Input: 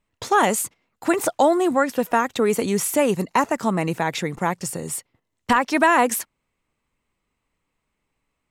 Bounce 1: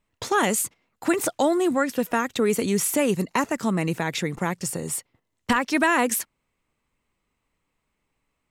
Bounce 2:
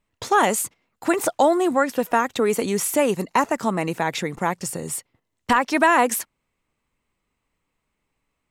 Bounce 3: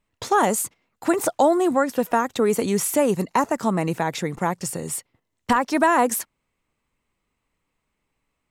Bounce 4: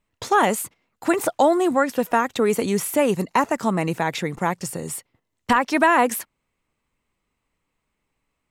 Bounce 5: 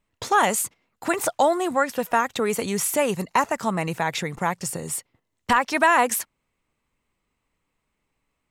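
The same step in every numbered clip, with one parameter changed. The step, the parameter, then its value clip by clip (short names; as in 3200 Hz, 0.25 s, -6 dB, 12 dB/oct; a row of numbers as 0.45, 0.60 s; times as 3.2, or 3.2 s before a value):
dynamic EQ, frequency: 820, 110, 2600, 6600, 300 Hz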